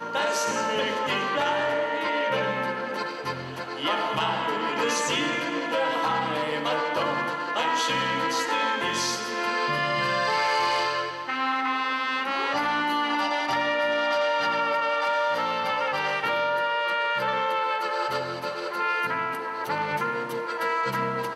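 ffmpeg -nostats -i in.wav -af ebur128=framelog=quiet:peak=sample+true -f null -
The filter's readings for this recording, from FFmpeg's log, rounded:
Integrated loudness:
  I:         -25.6 LUFS
  Threshold: -35.6 LUFS
Loudness range:
  LRA:         2.4 LU
  Threshold: -45.5 LUFS
  LRA low:   -26.9 LUFS
  LRA high:  -24.5 LUFS
Sample peak:
  Peak:      -14.6 dBFS
True peak:
  Peak:      -14.5 dBFS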